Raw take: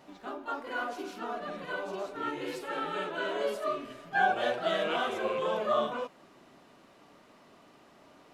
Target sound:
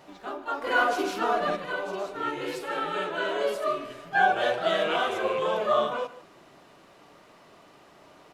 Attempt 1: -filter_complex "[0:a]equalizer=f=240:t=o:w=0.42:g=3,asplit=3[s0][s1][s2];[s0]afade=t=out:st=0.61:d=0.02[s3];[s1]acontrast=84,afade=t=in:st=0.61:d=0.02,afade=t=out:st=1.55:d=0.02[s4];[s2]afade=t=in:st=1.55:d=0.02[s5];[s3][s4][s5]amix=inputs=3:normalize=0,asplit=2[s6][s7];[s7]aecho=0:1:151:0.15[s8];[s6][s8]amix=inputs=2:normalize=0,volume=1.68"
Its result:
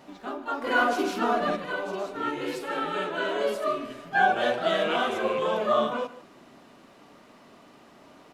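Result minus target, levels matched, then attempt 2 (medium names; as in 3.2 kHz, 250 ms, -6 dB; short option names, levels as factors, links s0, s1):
250 Hz band +4.0 dB
-filter_complex "[0:a]equalizer=f=240:t=o:w=0.42:g=-7.5,asplit=3[s0][s1][s2];[s0]afade=t=out:st=0.61:d=0.02[s3];[s1]acontrast=84,afade=t=in:st=0.61:d=0.02,afade=t=out:st=1.55:d=0.02[s4];[s2]afade=t=in:st=1.55:d=0.02[s5];[s3][s4][s5]amix=inputs=3:normalize=0,asplit=2[s6][s7];[s7]aecho=0:1:151:0.15[s8];[s6][s8]amix=inputs=2:normalize=0,volume=1.68"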